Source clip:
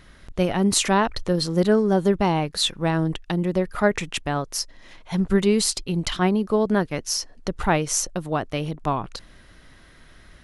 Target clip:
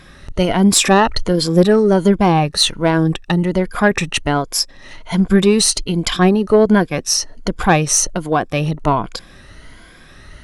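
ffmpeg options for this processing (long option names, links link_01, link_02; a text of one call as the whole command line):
ffmpeg -i in.wav -af "afftfilt=real='re*pow(10,9/40*sin(2*PI*(1.8*log(max(b,1)*sr/1024/100)/log(2)-(1.3)*(pts-256)/sr)))':imag='im*pow(10,9/40*sin(2*PI*(1.8*log(max(b,1)*sr/1024/100)/log(2)-(1.3)*(pts-256)/sr)))':win_size=1024:overlap=0.75,acontrast=73,volume=1dB" out.wav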